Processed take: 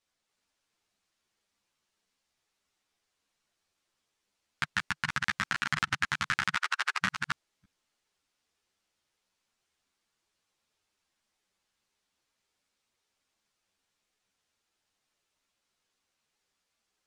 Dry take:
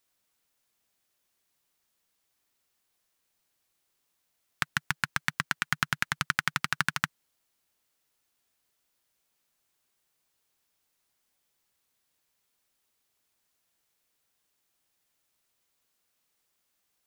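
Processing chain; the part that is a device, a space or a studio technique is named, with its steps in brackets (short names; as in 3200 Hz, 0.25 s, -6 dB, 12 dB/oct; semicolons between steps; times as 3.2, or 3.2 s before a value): reverse delay 0.294 s, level -2.5 dB; 6.55–7.01 elliptic high-pass 400 Hz, stop band 40 dB; string-machine ensemble chorus (ensemble effect; LPF 6900 Hz 12 dB/oct); gain +1 dB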